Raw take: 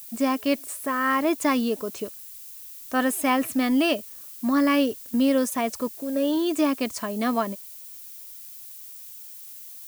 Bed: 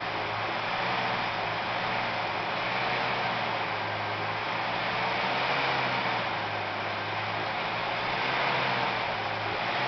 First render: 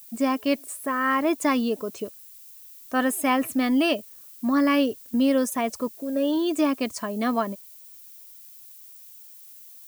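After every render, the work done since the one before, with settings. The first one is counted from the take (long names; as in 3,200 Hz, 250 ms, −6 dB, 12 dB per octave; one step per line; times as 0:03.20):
broadband denoise 6 dB, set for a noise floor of −42 dBFS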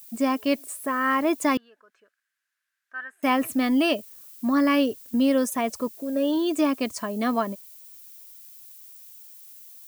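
0:01.57–0:03.23: resonant band-pass 1,600 Hz, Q 8.9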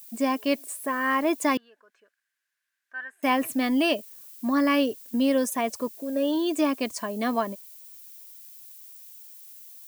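low-shelf EQ 140 Hz −10 dB
notch filter 1,300 Hz, Q 9.5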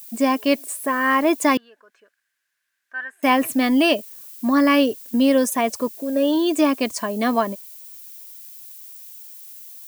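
level +6 dB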